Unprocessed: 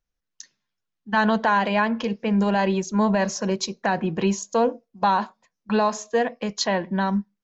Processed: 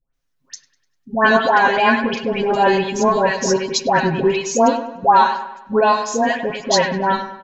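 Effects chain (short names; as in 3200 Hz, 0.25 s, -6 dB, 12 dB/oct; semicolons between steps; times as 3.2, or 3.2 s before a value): comb 7.4 ms, depth 85%; dispersion highs, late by 0.139 s, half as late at 1300 Hz; on a send: dark delay 0.1 s, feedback 46%, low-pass 2500 Hz, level -9.5 dB; on the sum: gain +5 dB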